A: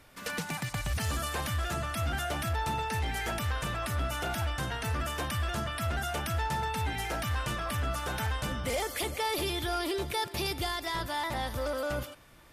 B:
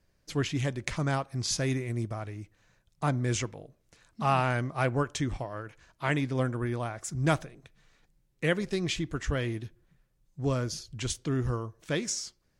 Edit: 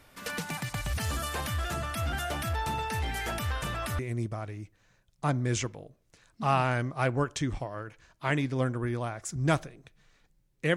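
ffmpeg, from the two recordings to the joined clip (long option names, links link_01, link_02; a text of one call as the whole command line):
ffmpeg -i cue0.wav -i cue1.wav -filter_complex "[0:a]apad=whole_dur=10.76,atrim=end=10.76,atrim=end=3.992[link_01];[1:a]atrim=start=1.778:end=8.55[link_02];[link_01][link_02]acrossfade=duration=0.004:curve1=hsin:curve2=hsin" out.wav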